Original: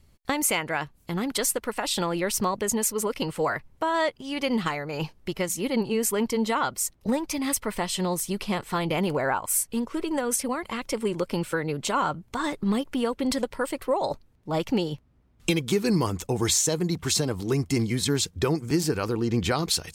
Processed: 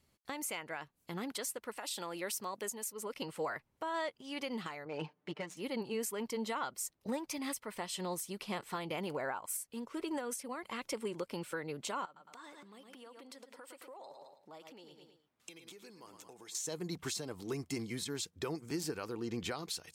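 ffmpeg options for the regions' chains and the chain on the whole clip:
-filter_complex "[0:a]asettb=1/sr,asplit=3[s0][s1][s2];[s0]atrim=end=1.784[s3];[s1]atrim=start=1.78:end=2.93,asetpts=PTS-STARTPTS,afade=t=in:d=0.004:c=qsin,afade=t=out:st=1.146:d=0.004:c=qsin,highpass=f=210:p=1,highshelf=f=6700:g=8[s4];[s2]atrim=start=2.926[s5];[s3][s4]acrossfade=d=0.004:c1=hsin:c2=qsin[s6];[s6][s5]acrossfade=d=0.004:c1=qsin:c2=hsin,asettb=1/sr,asplit=3[s7][s8][s9];[s7]atrim=end=4.854[s10];[s8]atrim=start=4.85:end=5.57,asetpts=PTS-STARTPTS,afade=t=in:d=0.004:c=qsin,afade=t=out:st=0.716:d=0.004:c=qsin,highpass=160,aecho=1:1:6.7:0.75,atrim=end_sample=31752,adynamicsmooth=sensitivity=2:basefreq=2400[s11];[s9]atrim=start=5.566[s12];[s10][s11]acrossfade=d=0.004:c1=hsin:c2=qsin[s13];[s13][s12]acrossfade=d=0.004:c1=qsin:c2=hsin,asettb=1/sr,asplit=3[s14][s15][s16];[s14]atrim=end=12.054[s17];[s15]atrim=start=12.05:end=16.55,asetpts=PTS-STARTPTS,afade=t=in:d=0.004:c=qsin,afade=t=out:st=4.496:d=0.004:c=qsin,aecho=1:1:109|218|327:0.251|0.0854|0.029,atrim=end_sample=198450,acompressor=threshold=0.0126:ratio=8:attack=3.2:release=140:knee=1:detection=peak,highpass=f=430:p=1[s18];[s16]atrim=start=16.546[s19];[s17][s18]acrossfade=d=0.004:c1=hsin:c2=qsin[s20];[s20][s19]acrossfade=d=0.004:c1=qsin:c2=hsin,highpass=f=260:p=1,alimiter=limit=0.0944:level=0:latency=1:release=493,volume=0.422"

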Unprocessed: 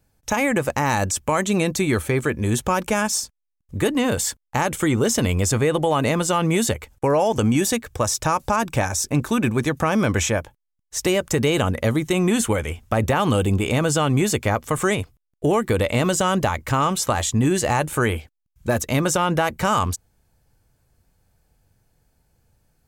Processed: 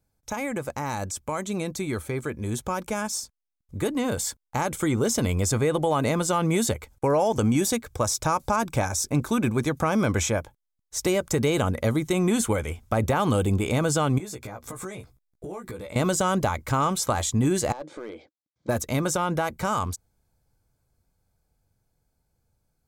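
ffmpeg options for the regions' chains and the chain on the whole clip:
-filter_complex "[0:a]asettb=1/sr,asplit=3[s0][s1][s2];[s0]atrim=end=14.184[s3];[s1]atrim=start=14.18:end=15.96,asetpts=PTS-STARTPTS,afade=t=in:d=0.004:c=qsin,afade=t=out:st=1.776:d=0.004:c=qsin,bandreject=f=3000:w=12,acompressor=threshold=0.0282:ratio=8:attack=3.2:release=140:knee=1:detection=peak,asplit=2[s4][s5];[s5]adelay=16,volume=0.631[s6];[s4][s6]amix=inputs=2:normalize=0,atrim=end_sample=78498[s7];[s2]atrim=start=15.956[s8];[s3][s7]acrossfade=d=0.004:c1=hsin:c2=qsin[s9];[s9][s8]acrossfade=d=0.004:c1=qsin:c2=hsin,asettb=1/sr,asplit=3[s10][s11][s12];[s10]atrim=end=17.724[s13];[s11]atrim=start=17.72:end=18.69,asetpts=PTS-STARTPTS,afade=t=in:d=0.004:c=qsin,afade=t=out:st=0.966:d=0.004:c=qsin,acompressor=threshold=0.0355:ratio=5:attack=3.2:release=140:knee=1:detection=peak,highpass=280,equalizer=f=310:t=q:w=4:g=8,equalizer=f=540:t=q:w=4:g=8,equalizer=f=970:t=q:w=4:g=-3,equalizer=f=1400:t=q:w=4:g=-6,equalizer=f=2700:t=q:w=4:g=-8,lowpass=f=5000:w=0.5412,lowpass=f=5000:w=1.3066,aeval=exprs='clip(val(0),-1,0.0355)':c=same[s14];[s12]atrim=start=18.686[s15];[s13][s14]acrossfade=d=0.004:c1=hsin:c2=qsin[s16];[s16][s15]acrossfade=d=0.004:c1=qsin:c2=hsin,equalizer=f=2800:t=o:w=0.27:g=-7,bandreject=f=1800:w=8.3,dynaudnorm=f=470:g=17:m=3.76,volume=0.355"

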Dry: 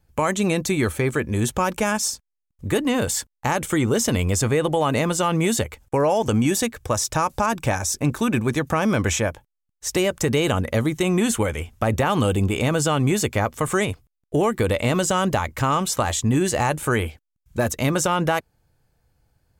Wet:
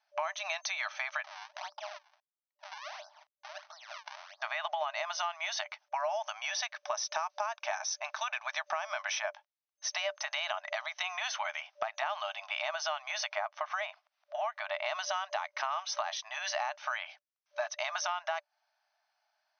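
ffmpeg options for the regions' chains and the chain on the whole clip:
-filter_complex "[0:a]asettb=1/sr,asplit=3[s0][s1][s2];[s0]atrim=end=1.244[s3];[s1]atrim=start=1.24:end=4.42,asetpts=PTS-STARTPTS,afade=t=in:d=0.004:c=qsin,afade=t=out:st=3.176:d=0.004:c=qsin,lowpass=f=1100:w=0.5412,lowpass=f=1100:w=1.3066,acrusher=samples=39:mix=1:aa=0.000001:lfo=1:lforange=62.4:lforate=1.5,acompressor=threshold=0.0251:ratio=8:attack=3.2:release=140:knee=1:detection=peak[s4];[s2]atrim=start=4.416[s5];[s3][s4]acrossfade=d=0.004:c1=hsin:c2=qsin[s6];[s6][s5]acrossfade=d=0.004:c1=qsin:c2=hsin,asettb=1/sr,asplit=3[s7][s8][s9];[s7]atrim=end=13.314[s10];[s8]atrim=start=13.31:end=14.86,asetpts=PTS-STARTPTS,afade=t=in:d=0.004:c=qsin,afade=t=out:st=1.546:d=0.004:c=qsin,lowpass=f=2100:p=1,acompressor=mode=upward:threshold=0.0355:ratio=2.5:attack=3.2:release=140:knee=2.83:detection=peak[s11];[s9]atrim=start=14.856[s12];[s10][s11]acrossfade=d=0.004:c1=hsin:c2=qsin[s13];[s13][s12]acrossfade=d=0.004:c1=qsin:c2=hsin,afftfilt=real='re*between(b*sr/4096,590,6300)':imag='im*between(b*sr/4096,590,6300)':win_size=4096:overlap=0.75,acompressor=threshold=0.0355:ratio=6,volume=0.794"

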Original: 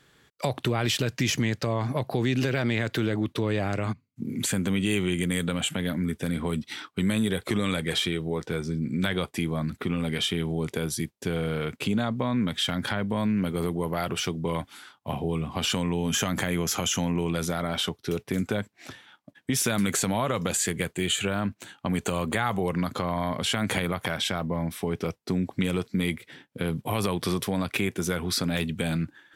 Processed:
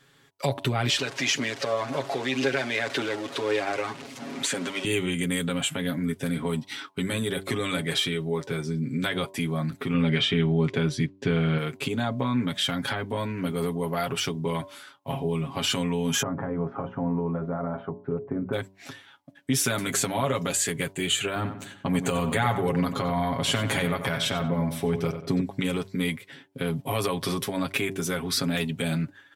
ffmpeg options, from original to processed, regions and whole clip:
-filter_complex "[0:a]asettb=1/sr,asplit=3[s0][s1][s2];[s0]atrim=end=0.894[s3];[s1]atrim=start=0.89:end=4.85,asetpts=PTS-STARTPTS,afade=t=in:d=0.004:c=qsin,afade=t=out:st=3.956:d=0.004:c=qsin,aeval=exprs='val(0)+0.5*0.0316*sgn(val(0))':c=same,highpass=340,lowpass=7000,aphaser=in_gain=1:out_gain=1:delay=2.1:decay=0.28:speed=1.9:type=triangular[s4];[s2]atrim=start=4.846[s5];[s3][s4]acrossfade=d=0.004:c1=hsin:c2=qsin[s6];[s6][s5]acrossfade=d=0.004:c1=qsin:c2=hsin,asettb=1/sr,asplit=3[s7][s8][s9];[s7]atrim=end=9.944[s10];[s8]atrim=start=9.94:end=11.58,asetpts=PTS-STARTPTS,afade=t=in:d=0.004:c=qsin,afade=t=out:st=1.636:d=0.004:c=qsin,lowpass=3100,acontrast=63,equalizer=f=690:w=0.58:g=-4.5[s11];[s9]atrim=start=11.576[s12];[s10][s11]acrossfade=d=0.004:c1=hsin:c2=qsin[s13];[s13][s12]acrossfade=d=0.004:c1=qsin:c2=hsin,asettb=1/sr,asplit=3[s14][s15][s16];[s14]atrim=end=16.224[s17];[s15]atrim=start=16.22:end=18.53,asetpts=PTS-STARTPTS,afade=t=in:d=0.004:c=qsin,afade=t=out:st=2.306:d=0.004:c=qsin,lowpass=f=1200:w=0.5412,lowpass=f=1200:w=1.3066,bandreject=f=60:t=h:w=6,bandreject=f=120:t=h:w=6,bandreject=f=180:t=h:w=6,bandreject=f=240:t=h:w=6,bandreject=f=300:t=h:w=6,bandreject=f=360:t=h:w=6,bandreject=f=420:t=h:w=6,bandreject=f=480:t=h:w=6,bandreject=f=540:t=h:w=6[s18];[s16]atrim=start=18.526[s19];[s17][s18]acrossfade=d=0.004:c1=hsin:c2=qsin[s20];[s20][s19]acrossfade=d=0.004:c1=qsin:c2=hsin,asettb=1/sr,asplit=3[s21][s22][s23];[s21]atrim=end=21.364[s24];[s22]atrim=start=21.36:end=25.41,asetpts=PTS-STARTPTS,afade=t=in:d=0.004:c=qsin,afade=t=out:st=4.046:d=0.004:c=qsin,lowshelf=f=200:g=5.5,asplit=2[s25][s26];[s26]adelay=93,lowpass=f=2900:p=1,volume=0.376,asplit=2[s27][s28];[s28]adelay=93,lowpass=f=2900:p=1,volume=0.39,asplit=2[s29][s30];[s30]adelay=93,lowpass=f=2900:p=1,volume=0.39,asplit=2[s31][s32];[s32]adelay=93,lowpass=f=2900:p=1,volume=0.39[s33];[s25][s27][s29][s31][s33]amix=inputs=5:normalize=0,atrim=end_sample=178605[s34];[s23]atrim=start=25.406[s35];[s24][s34]acrossfade=d=0.004:c1=hsin:c2=qsin[s36];[s36][s35]acrossfade=d=0.004:c1=qsin:c2=hsin,lowshelf=f=110:g=-4,aecho=1:1:7.3:0.74,bandreject=f=96.23:t=h:w=4,bandreject=f=192.46:t=h:w=4,bandreject=f=288.69:t=h:w=4,bandreject=f=384.92:t=h:w=4,bandreject=f=481.15:t=h:w=4,bandreject=f=577.38:t=h:w=4,bandreject=f=673.61:t=h:w=4,bandreject=f=769.84:t=h:w=4,bandreject=f=866.07:t=h:w=4,bandreject=f=962.3:t=h:w=4,bandreject=f=1058.53:t=h:w=4,volume=0.891"

